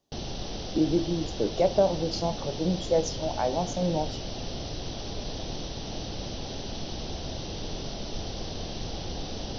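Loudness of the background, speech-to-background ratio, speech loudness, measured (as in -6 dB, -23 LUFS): -36.0 LUFS, 8.0 dB, -28.0 LUFS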